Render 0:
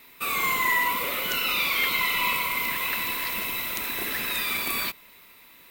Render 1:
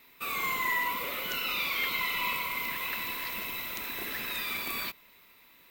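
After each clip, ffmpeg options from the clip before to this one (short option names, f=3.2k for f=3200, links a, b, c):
-af "equalizer=f=10k:w=1.7:g=-6,volume=-6dB"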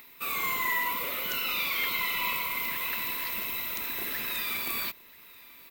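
-af "acompressor=mode=upward:threshold=-50dB:ratio=2.5,crystalizer=i=0.5:c=0,aecho=1:1:986:0.0668"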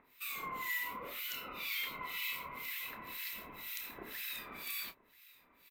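-filter_complex "[0:a]acrossover=split=1600[a][b];[a]aeval=exprs='val(0)*(1-1/2+1/2*cos(2*PI*2*n/s))':c=same[c];[b]aeval=exprs='val(0)*(1-1/2-1/2*cos(2*PI*2*n/s))':c=same[d];[c][d]amix=inputs=2:normalize=0,asplit=2[e][f];[f]adelay=28,volume=-10.5dB[g];[e][g]amix=inputs=2:normalize=0,aresample=32000,aresample=44100,volume=-5.5dB"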